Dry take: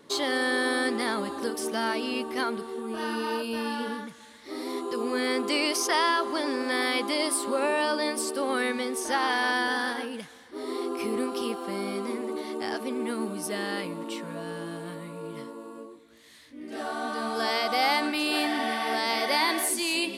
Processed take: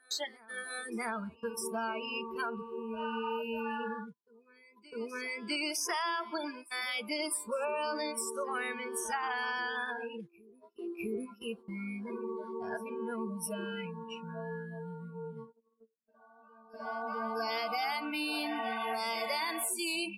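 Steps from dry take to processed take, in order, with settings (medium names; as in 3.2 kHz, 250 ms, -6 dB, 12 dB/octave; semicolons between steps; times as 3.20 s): spectral noise reduction 30 dB; gate -44 dBFS, range -29 dB; compression 4:1, threshold -30 dBFS, peak gain reduction 8 dB; on a send: reverse echo 654 ms -22.5 dB; on the sum: trim -1.5 dB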